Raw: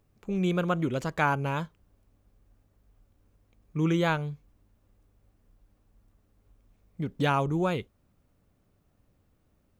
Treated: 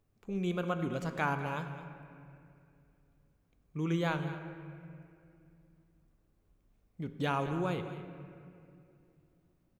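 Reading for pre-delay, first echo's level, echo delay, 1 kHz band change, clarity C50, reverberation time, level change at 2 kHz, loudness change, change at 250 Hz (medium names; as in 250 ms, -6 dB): 3 ms, -14.0 dB, 213 ms, -6.0 dB, 8.0 dB, 2.6 s, -6.0 dB, -7.0 dB, -6.0 dB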